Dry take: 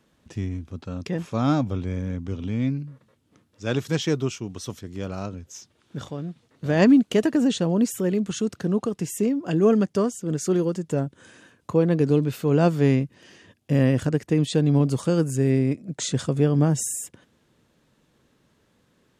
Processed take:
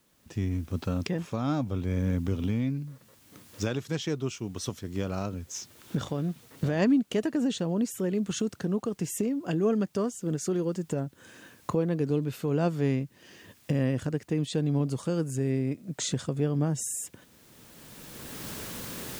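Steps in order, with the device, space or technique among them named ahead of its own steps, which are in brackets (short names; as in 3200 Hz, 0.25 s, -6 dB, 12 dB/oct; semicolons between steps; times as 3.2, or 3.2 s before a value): cheap recorder with automatic gain (white noise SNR 40 dB; recorder AGC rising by 17 dB/s); gain -7.5 dB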